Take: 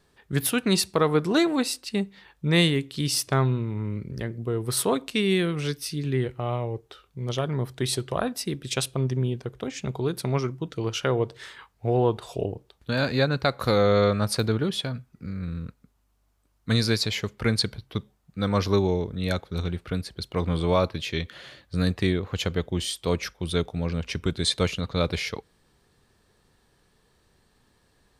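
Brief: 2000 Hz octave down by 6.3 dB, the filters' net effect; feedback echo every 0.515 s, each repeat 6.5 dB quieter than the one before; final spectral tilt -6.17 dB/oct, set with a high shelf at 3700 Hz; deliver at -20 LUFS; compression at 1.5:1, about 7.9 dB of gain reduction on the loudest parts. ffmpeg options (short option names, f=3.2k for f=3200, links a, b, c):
-af "equalizer=f=2k:t=o:g=-6,highshelf=f=3.7k:g=-8.5,acompressor=threshold=-40dB:ratio=1.5,aecho=1:1:515|1030|1545|2060|2575|3090:0.473|0.222|0.105|0.0491|0.0231|0.0109,volume=13.5dB"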